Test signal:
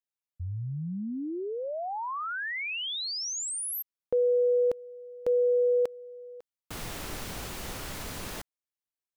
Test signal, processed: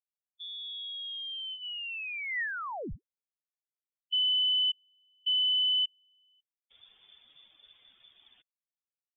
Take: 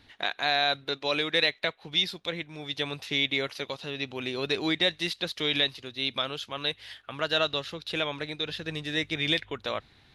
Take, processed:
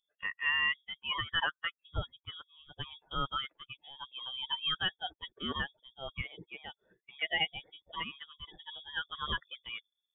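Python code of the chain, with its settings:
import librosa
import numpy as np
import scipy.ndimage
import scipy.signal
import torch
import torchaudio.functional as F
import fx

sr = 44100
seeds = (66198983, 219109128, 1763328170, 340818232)

y = fx.bin_expand(x, sr, power=2.0)
y = fx.highpass(y, sr, hz=130.0, slope=6)
y = fx.dynamic_eq(y, sr, hz=1600.0, q=4.4, threshold_db=-53.0, ratio=4.0, max_db=7)
y = fx.freq_invert(y, sr, carrier_hz=3500)
y = y * 10.0 ** (-2.5 / 20.0)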